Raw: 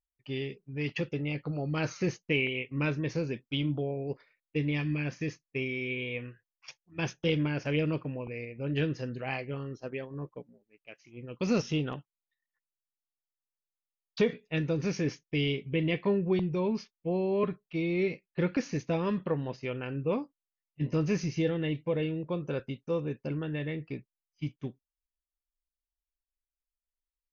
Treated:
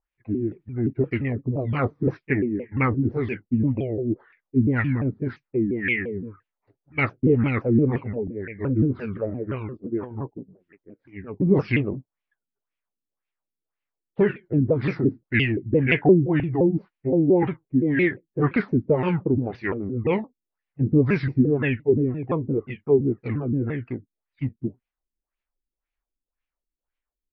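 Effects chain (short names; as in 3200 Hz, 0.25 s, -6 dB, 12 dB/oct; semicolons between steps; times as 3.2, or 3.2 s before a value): repeated pitch sweeps -5.5 st, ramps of 0.173 s; LFO low-pass sine 1.9 Hz 260–2600 Hz; gain +7.5 dB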